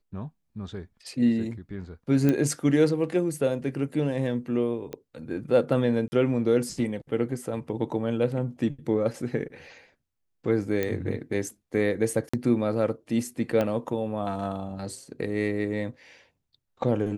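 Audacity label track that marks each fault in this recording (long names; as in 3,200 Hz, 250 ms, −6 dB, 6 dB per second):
2.290000	2.290000	click −12 dBFS
4.930000	4.930000	click −22 dBFS
6.080000	6.120000	drop-out 40 ms
10.830000	10.830000	click −14 dBFS
12.290000	12.340000	drop-out 45 ms
13.610000	13.610000	click −14 dBFS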